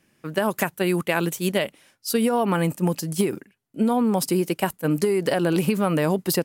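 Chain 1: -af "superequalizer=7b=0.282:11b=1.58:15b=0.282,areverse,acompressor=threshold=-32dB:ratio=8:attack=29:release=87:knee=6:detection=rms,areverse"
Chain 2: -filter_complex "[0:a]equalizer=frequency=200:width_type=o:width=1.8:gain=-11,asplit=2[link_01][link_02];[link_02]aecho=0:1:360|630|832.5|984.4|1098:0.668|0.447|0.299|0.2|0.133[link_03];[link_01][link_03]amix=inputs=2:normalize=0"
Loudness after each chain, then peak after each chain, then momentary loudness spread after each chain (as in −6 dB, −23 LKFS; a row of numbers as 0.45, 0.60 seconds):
−34.0, −25.5 LKFS; −17.5, −7.5 dBFS; 4, 4 LU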